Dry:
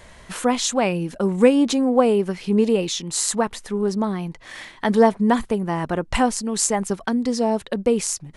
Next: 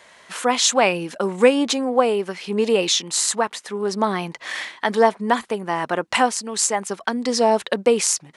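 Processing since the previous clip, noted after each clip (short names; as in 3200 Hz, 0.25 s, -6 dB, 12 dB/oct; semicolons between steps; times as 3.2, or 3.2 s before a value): weighting filter A; AGC gain up to 12 dB; gain -1 dB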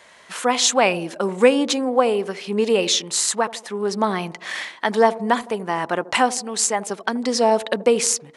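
band-limited delay 80 ms, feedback 52%, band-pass 410 Hz, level -15.5 dB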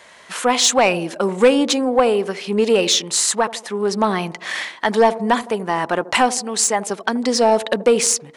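soft clip -7.5 dBFS, distortion -18 dB; gain +3.5 dB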